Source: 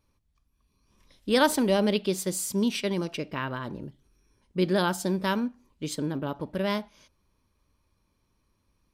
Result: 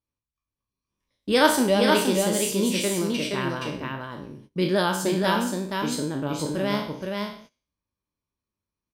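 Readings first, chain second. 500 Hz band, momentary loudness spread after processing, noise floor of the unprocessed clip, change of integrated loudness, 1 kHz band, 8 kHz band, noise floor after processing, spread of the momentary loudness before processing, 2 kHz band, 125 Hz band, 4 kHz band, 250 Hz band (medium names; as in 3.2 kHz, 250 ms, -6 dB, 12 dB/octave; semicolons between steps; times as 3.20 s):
+4.0 dB, 14 LU, -73 dBFS, +3.5 dB, +5.0 dB, +5.5 dB, under -85 dBFS, 13 LU, +5.5 dB, +3.0 dB, +5.5 dB, +3.0 dB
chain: spectral sustain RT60 0.53 s; flange 1.1 Hz, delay 5.8 ms, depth 4.8 ms, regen +72%; high-pass 47 Hz 6 dB/octave; on a send: delay 472 ms -3.5 dB; on the sum: gate -53 dBFS, range -20 dB; trim +5.5 dB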